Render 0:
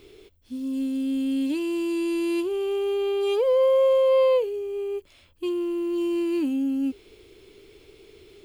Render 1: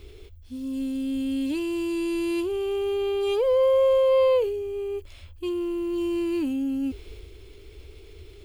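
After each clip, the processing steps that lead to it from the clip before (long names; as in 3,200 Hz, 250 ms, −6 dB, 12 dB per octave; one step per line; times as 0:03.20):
transient designer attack −1 dB, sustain +4 dB
low shelf with overshoot 110 Hz +13.5 dB, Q 1.5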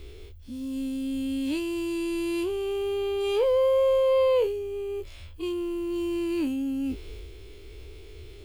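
every bin's largest magnitude spread in time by 60 ms
level −2.5 dB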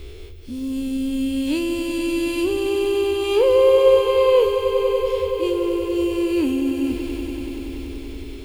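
echo that builds up and dies away 95 ms, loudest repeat 5, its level −11.5 dB
level +6.5 dB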